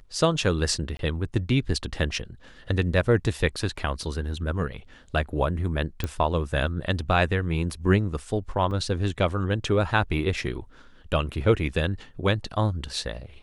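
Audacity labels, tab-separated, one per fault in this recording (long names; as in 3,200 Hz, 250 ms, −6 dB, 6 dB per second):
0.970000	0.990000	drop-out 22 ms
6.040000	6.040000	click −14 dBFS
8.710000	8.710000	drop-out 2.8 ms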